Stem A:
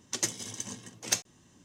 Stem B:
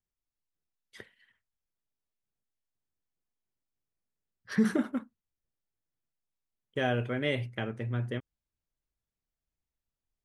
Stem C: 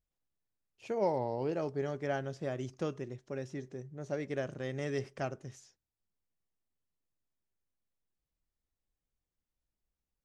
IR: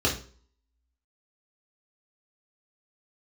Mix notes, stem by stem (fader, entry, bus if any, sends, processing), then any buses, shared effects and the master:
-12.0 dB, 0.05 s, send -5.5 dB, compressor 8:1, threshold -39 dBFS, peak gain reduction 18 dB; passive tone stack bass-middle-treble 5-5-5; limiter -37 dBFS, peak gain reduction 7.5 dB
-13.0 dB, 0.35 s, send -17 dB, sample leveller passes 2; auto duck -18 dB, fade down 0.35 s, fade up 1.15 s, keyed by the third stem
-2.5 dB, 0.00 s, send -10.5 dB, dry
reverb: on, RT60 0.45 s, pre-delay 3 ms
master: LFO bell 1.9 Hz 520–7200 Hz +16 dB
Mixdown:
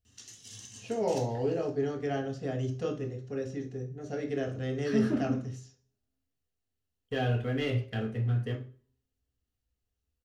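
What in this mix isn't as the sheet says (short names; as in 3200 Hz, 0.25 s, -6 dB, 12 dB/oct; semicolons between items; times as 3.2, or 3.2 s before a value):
stem A -12.0 dB -> -1.0 dB; stem B: send -17 dB -> -10.5 dB; master: missing LFO bell 1.9 Hz 520–7200 Hz +16 dB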